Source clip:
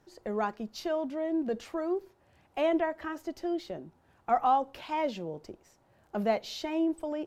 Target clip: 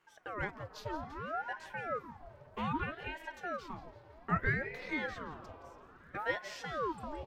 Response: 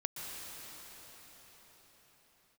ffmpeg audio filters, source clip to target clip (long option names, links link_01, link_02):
-filter_complex "[0:a]equalizer=frequency=1300:width=0.97:gain=4.5,aecho=1:1:5.6:0.32,aecho=1:1:170|340|510|680|850:0.178|0.0925|0.0481|0.025|0.013,asplit=2[link_01][link_02];[1:a]atrim=start_sample=2205,lowpass=4100,adelay=13[link_03];[link_02][link_03]afir=irnorm=-1:irlink=0,volume=-14.5dB[link_04];[link_01][link_04]amix=inputs=2:normalize=0,aeval=exprs='val(0)*sin(2*PI*750*n/s+750*0.7/0.62*sin(2*PI*0.62*n/s))':channel_layout=same,volume=-6.5dB"